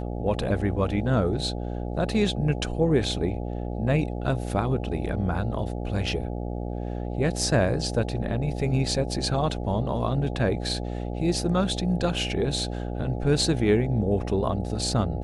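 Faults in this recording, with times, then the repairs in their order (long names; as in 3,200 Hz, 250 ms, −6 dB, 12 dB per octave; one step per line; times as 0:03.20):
mains buzz 60 Hz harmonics 14 −31 dBFS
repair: hum removal 60 Hz, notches 14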